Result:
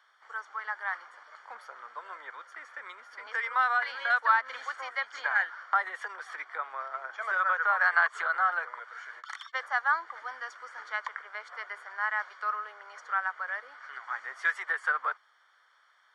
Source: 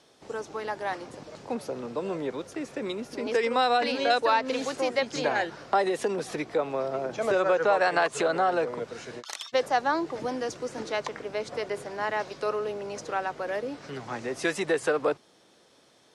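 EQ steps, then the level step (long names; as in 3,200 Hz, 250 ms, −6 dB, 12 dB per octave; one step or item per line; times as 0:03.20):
Savitzky-Golay smoothing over 41 samples
Chebyshev high-pass filter 1,300 Hz, order 3
+7.0 dB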